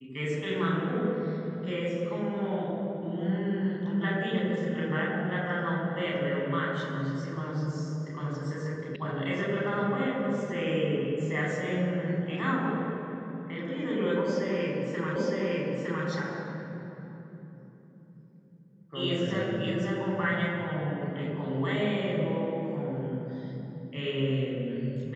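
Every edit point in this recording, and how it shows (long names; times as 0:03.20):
0:08.96: cut off before it has died away
0:15.16: the same again, the last 0.91 s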